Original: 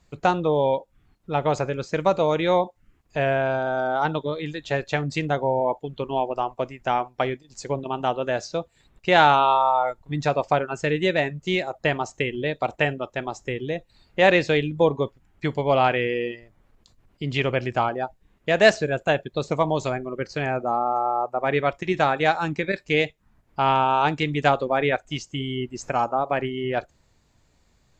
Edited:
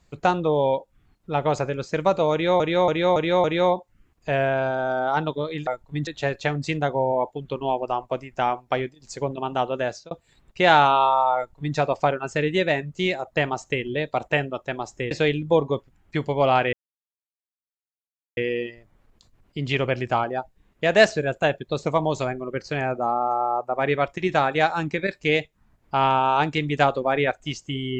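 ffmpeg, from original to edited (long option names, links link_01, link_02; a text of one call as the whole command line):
ffmpeg -i in.wav -filter_complex "[0:a]asplit=10[link_01][link_02][link_03][link_04][link_05][link_06][link_07][link_08][link_09][link_10];[link_01]atrim=end=2.602[link_11];[link_02]atrim=start=2.318:end=2.602[link_12];[link_03]atrim=start=2.318:end=2.602[link_13];[link_04]atrim=start=2.318:end=2.602[link_14];[link_05]atrim=start=2.318:end=4.552[link_15];[link_06]atrim=start=9.838:end=10.242[link_16];[link_07]atrim=start=4.548:end=8.59,asetpts=PTS-STARTPTS,afade=type=out:start_time=3.682:duration=0.36:curve=qsin[link_17];[link_08]atrim=start=8.59:end=13.592,asetpts=PTS-STARTPTS,afade=type=in:duration=0.004:curve=hsin[link_18];[link_09]atrim=start=14.398:end=16.02,asetpts=PTS-STARTPTS,afade=type=out:start_time=1.618:duration=0.004:curve=hsin,apad=pad_dur=1.64[link_19];[link_10]atrim=start=16.02,asetpts=PTS-STARTPTS,afade=type=in:duration=0.004:curve=hsin[link_20];[link_11][link_12]acrossfade=duration=0.004:curve1=hsin:curve2=hsin[link_21];[link_21][link_13]acrossfade=duration=0.004:curve1=hsin:curve2=hsin[link_22];[link_22][link_14]acrossfade=duration=0.004:curve1=hsin:curve2=hsin[link_23];[link_23][link_15]acrossfade=duration=0.004:curve1=hsin:curve2=hsin[link_24];[link_24][link_16]acrossfade=duration=0.004:curve1=hsin:curve2=hsin[link_25];[link_17][link_18]concat=n=2:v=0:a=1[link_26];[link_25][link_26]acrossfade=duration=0.004:curve1=hsin:curve2=hsin[link_27];[link_19][link_20]concat=n=2:v=0:a=1[link_28];[link_27][link_28]acrossfade=duration=0.004:curve1=hsin:curve2=hsin" out.wav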